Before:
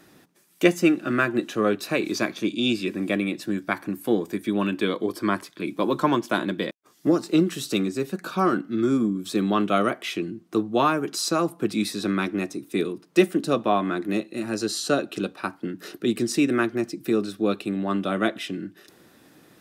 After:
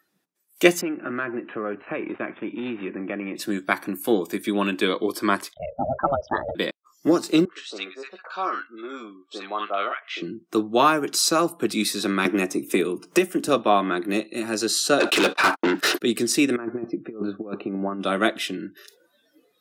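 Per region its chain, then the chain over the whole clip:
0:00.81–0:03.36: gap after every zero crossing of 0.086 ms + low-pass filter 2,300 Hz 24 dB per octave + downward compressor 3 to 1, threshold −28 dBFS
0:05.54–0:06.55: spectral envelope exaggerated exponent 3 + high-frequency loss of the air 220 metres + ring modulation 270 Hz
0:07.45–0:10.22: band-pass filter 790–4,800 Hz + high-shelf EQ 2,700 Hz −10 dB + multiband delay without the direct sound lows, highs 60 ms, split 1,200 Hz
0:12.25–0:13.49: parametric band 4,100 Hz −7.5 dB 0.41 octaves + multiband upward and downward compressor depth 100%
0:15.00–0:16.01: noise gate −44 dBFS, range −55 dB + high-pass filter 240 Hz 6 dB per octave + mid-hump overdrive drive 30 dB, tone 3,000 Hz, clips at −12.5 dBFS
0:16.56–0:18.01: low-pass filter 1,200 Hz + compressor whose output falls as the input rises −28 dBFS, ratio −0.5
whole clip: high-shelf EQ 5,300 Hz +4.5 dB; noise reduction from a noise print of the clip's start 23 dB; high-pass filter 320 Hz 6 dB per octave; level +4 dB

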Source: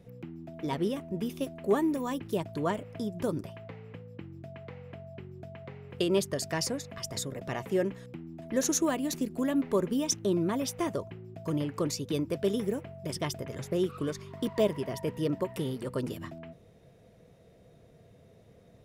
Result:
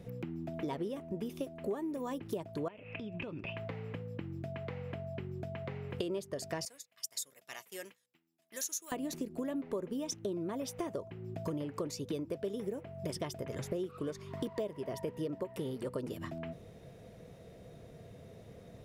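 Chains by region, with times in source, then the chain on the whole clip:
0:02.68–0:03.57: downward compressor 12 to 1, threshold −42 dBFS + low-pass with resonance 2,600 Hz, resonance Q 14
0:06.65–0:08.92: downward expander −34 dBFS + first difference
whole clip: dynamic equaliser 520 Hz, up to +6 dB, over −40 dBFS, Q 0.8; downward compressor 6 to 1, threshold −41 dBFS; level +5 dB

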